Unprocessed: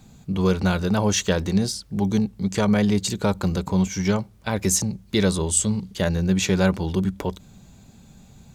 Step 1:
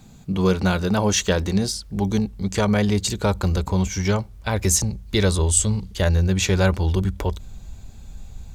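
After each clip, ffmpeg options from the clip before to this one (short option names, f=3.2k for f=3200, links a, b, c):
-af "asubboost=boost=11:cutoff=53,volume=2dB"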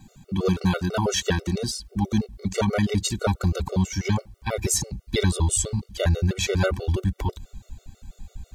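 -af "afftfilt=real='re*gt(sin(2*PI*6.1*pts/sr)*(1-2*mod(floor(b*sr/1024/380),2)),0)':imag='im*gt(sin(2*PI*6.1*pts/sr)*(1-2*mod(floor(b*sr/1024/380),2)),0)':win_size=1024:overlap=0.75"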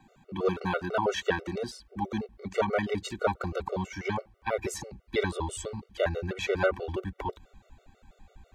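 -filter_complex "[0:a]acrossover=split=320 2700:gain=0.178 1 0.141[a][b][c];[a][b][c]amix=inputs=3:normalize=0"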